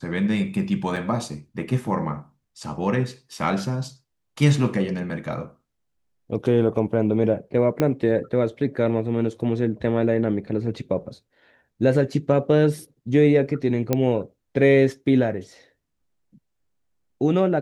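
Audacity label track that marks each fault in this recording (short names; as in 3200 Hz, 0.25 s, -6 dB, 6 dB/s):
0.960000	0.970000	gap 5.6 ms
7.800000	7.800000	pop -9 dBFS
13.930000	13.930000	pop -7 dBFS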